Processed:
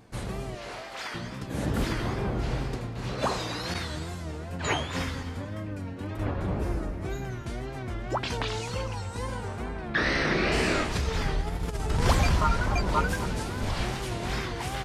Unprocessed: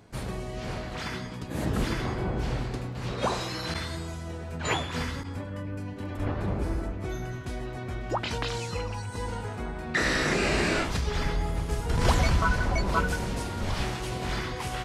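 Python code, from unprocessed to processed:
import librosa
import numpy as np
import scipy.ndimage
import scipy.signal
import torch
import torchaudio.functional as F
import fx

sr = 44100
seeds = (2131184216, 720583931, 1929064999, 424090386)

p1 = fx.highpass(x, sr, hz=510.0, slope=12, at=(0.55, 1.15))
p2 = fx.over_compress(p1, sr, threshold_db=-30.0, ratio=-0.5, at=(11.4, 11.87))
p3 = fx.wow_flutter(p2, sr, seeds[0], rate_hz=2.1, depth_cents=130.0)
p4 = fx.savgol(p3, sr, points=15, at=(9.68, 10.51), fade=0.02)
y = p4 + fx.echo_feedback(p4, sr, ms=259, feedback_pct=33, wet_db=-14, dry=0)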